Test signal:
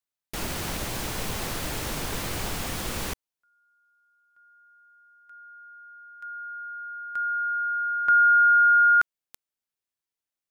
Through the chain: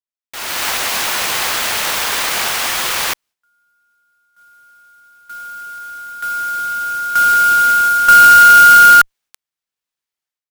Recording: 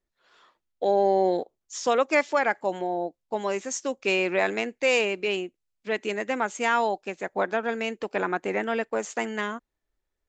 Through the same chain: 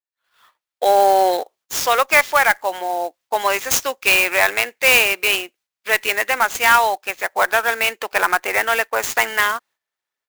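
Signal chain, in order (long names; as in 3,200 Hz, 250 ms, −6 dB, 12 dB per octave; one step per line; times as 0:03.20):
downward expander −52 dBFS, range −11 dB
high-pass filter 950 Hz 12 dB per octave
automatic gain control gain up to 16 dB
in parallel at −5 dB: asymmetric clip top −12 dBFS
on the sum: converter with an unsteady clock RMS 0.024 ms
level −2.5 dB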